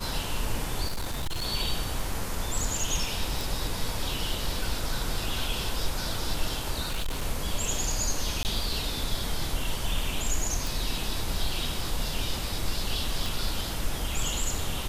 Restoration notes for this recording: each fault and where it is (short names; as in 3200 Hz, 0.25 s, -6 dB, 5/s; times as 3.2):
0.87–1.46 clipped -26.5 dBFS
3.41 pop
6.81–7.23 clipped -25.5 dBFS
8.43–8.45 gap 19 ms
10.67 pop
13.26 pop